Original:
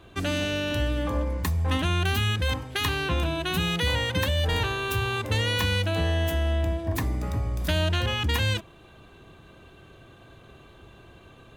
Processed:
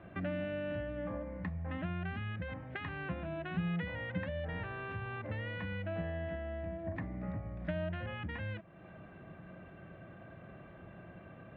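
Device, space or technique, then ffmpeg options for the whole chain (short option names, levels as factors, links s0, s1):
bass amplifier: -af "acompressor=threshold=0.0126:ratio=3,highpass=61,equalizer=f=67:t=q:w=4:g=-6,equalizer=f=180:t=q:w=4:g=10,equalizer=f=420:t=q:w=4:g=-6,equalizer=f=610:t=q:w=4:g=7,equalizer=f=1000:t=q:w=4:g=-5,equalizer=f=1900:t=q:w=4:g=4,lowpass=f=2200:w=0.5412,lowpass=f=2200:w=1.3066,volume=0.794"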